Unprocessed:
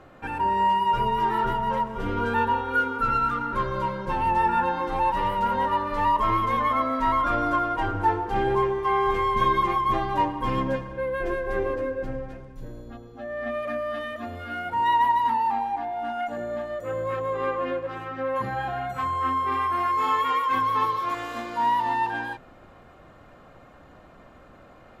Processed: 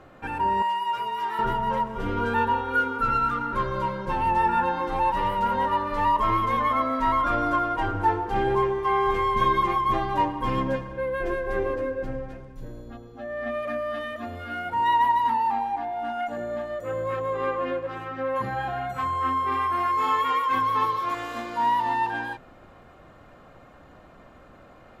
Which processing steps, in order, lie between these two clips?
0.62–1.39 HPF 1300 Hz 6 dB/oct

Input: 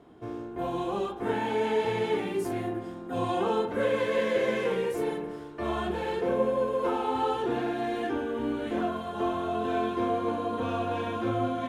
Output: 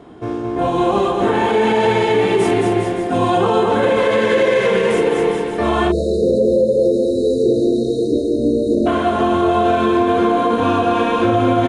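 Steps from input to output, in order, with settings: downsampling 22050 Hz; on a send: bouncing-ball echo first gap 0.22 s, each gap 0.85×, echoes 5; on the sum: spectral delete 5.92–8.86, 680–3700 Hz; maximiser +19 dB; gain -5.5 dB

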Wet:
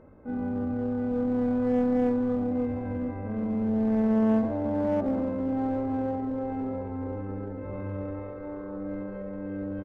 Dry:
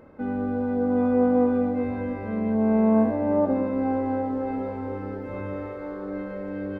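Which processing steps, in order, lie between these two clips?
LPF 1300 Hz 6 dB/oct; low shelf 120 Hz +7 dB; de-hum 78.24 Hz, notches 7; in parallel at -11.5 dB: wavefolder -23.5 dBFS; on the sum: tempo 0.69×; echo 0.816 s -19.5 dB; gain -5 dB

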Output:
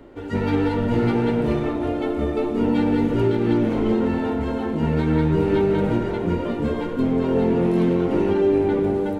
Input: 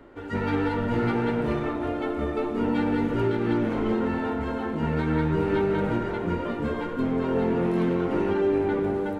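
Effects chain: bell 1400 Hz -7 dB 1.4 oct; gain +5.5 dB

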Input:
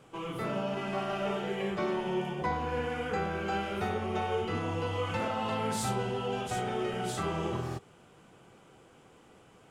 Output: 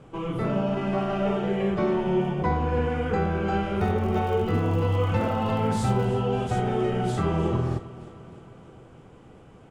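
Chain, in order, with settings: steep low-pass 12000 Hz; tilt -2.5 dB/oct; 3.78–6.07 crackle 120/s -40 dBFS; feedback echo 0.308 s, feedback 58%, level -17 dB; gain +4 dB

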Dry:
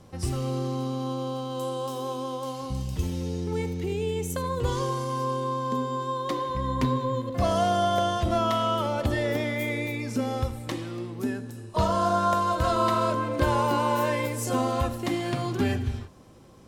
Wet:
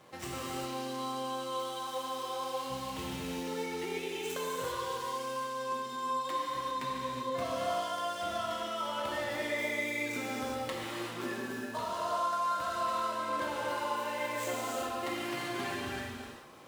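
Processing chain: median filter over 9 samples; HPF 1400 Hz 6 dB/oct; compressor 6:1, threshold -43 dBFS, peak gain reduction 16.5 dB; non-linear reverb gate 0.42 s flat, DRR -4.5 dB; gain +5 dB

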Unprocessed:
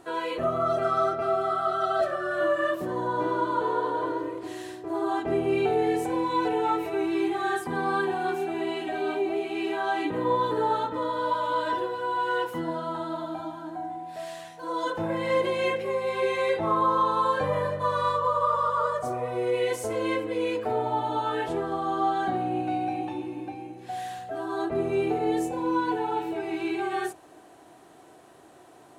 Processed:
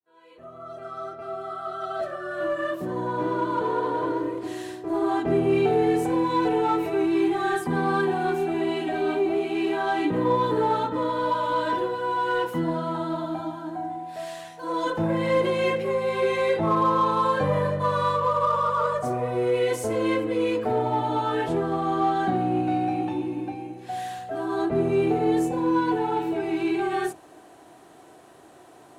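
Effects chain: opening faded in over 4.43 s; dynamic EQ 180 Hz, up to +8 dB, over -44 dBFS, Q 0.89; in parallel at -11 dB: hard clip -27.5 dBFS, distortion -7 dB

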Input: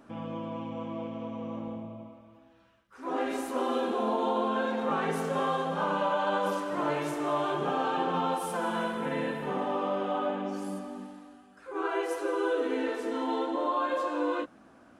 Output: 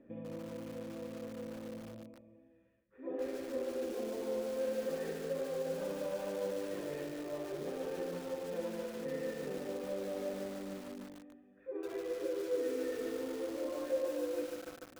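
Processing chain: band shelf 1100 Hz -12.5 dB 2.8 oct; compressor 6:1, threshold -37 dBFS, peak gain reduction 7.5 dB; vocal tract filter e; lo-fi delay 0.147 s, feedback 80%, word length 10-bit, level -6 dB; gain +13.5 dB

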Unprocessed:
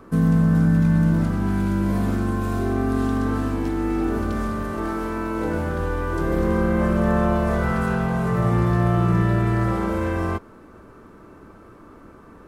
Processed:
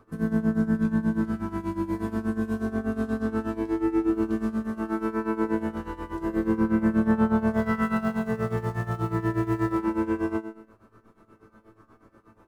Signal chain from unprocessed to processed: 7.53–9.78 crackle 330/s -29 dBFS; resonator 110 Hz, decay 0.7 s, harmonics all, mix 90%; tremolo 8.3 Hz, depth 83%; gain +5.5 dB

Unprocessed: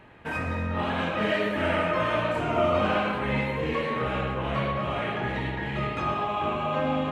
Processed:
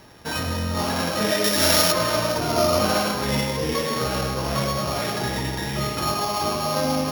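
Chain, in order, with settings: sample sorter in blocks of 8 samples; 1.44–1.92 high shelf 3100 Hz +11.5 dB; gain +3.5 dB

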